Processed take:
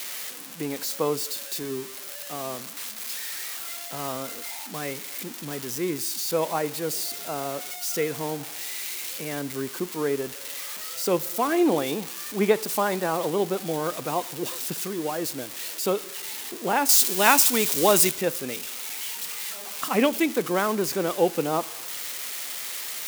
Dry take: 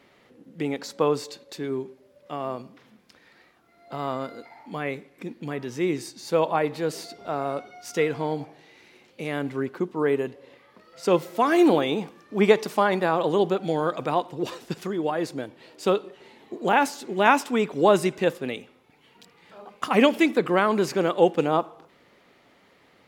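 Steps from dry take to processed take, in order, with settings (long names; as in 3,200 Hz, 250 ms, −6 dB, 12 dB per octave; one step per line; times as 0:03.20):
spike at every zero crossing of −17.5 dBFS
high-shelf EQ 2,200 Hz −3 dB, from 0:16.89 +10.5 dB, from 0:18.11 −2 dB
level −3 dB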